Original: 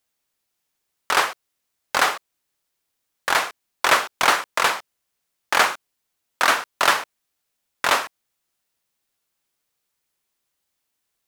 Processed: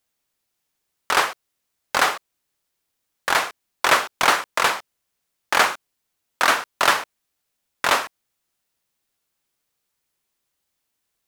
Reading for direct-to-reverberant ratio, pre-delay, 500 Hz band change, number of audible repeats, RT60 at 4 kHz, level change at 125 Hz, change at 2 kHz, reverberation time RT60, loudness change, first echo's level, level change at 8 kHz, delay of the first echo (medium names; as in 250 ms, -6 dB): no reverb, no reverb, +0.5 dB, no echo, no reverb, +2.0 dB, 0.0 dB, no reverb, 0.0 dB, no echo, 0.0 dB, no echo